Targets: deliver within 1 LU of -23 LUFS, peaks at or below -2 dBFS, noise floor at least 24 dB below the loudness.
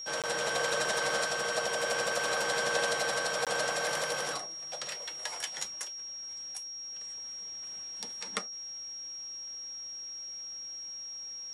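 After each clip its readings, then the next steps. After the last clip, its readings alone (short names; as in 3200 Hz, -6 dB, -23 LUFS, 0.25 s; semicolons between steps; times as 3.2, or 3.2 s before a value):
dropouts 2; longest dropout 17 ms; steady tone 5600 Hz; tone level -39 dBFS; loudness -33.0 LUFS; peak -17.0 dBFS; loudness target -23.0 LUFS
-> interpolate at 0.22/3.45, 17 ms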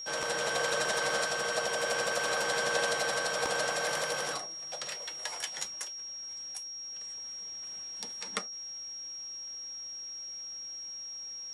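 dropouts 0; steady tone 5600 Hz; tone level -39 dBFS
-> notch 5600 Hz, Q 30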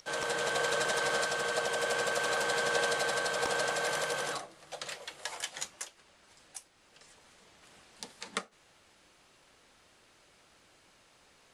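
steady tone none; loudness -32.0 LUFS; peak -16.5 dBFS; loudness target -23.0 LUFS
-> gain +9 dB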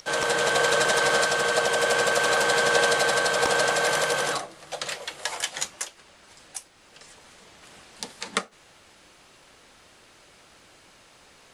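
loudness -23.0 LUFS; peak -7.5 dBFS; noise floor -55 dBFS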